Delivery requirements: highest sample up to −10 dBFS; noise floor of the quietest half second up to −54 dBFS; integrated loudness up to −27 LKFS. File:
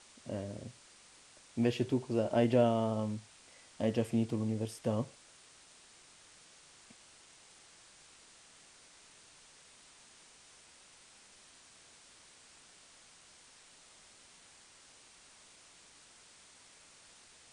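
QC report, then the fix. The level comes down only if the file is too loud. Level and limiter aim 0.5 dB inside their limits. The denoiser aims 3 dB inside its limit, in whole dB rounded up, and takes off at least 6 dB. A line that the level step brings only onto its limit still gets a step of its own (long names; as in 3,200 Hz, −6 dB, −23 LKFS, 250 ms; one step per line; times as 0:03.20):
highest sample −14.5 dBFS: in spec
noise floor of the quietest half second −60 dBFS: in spec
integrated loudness −33.5 LKFS: in spec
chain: no processing needed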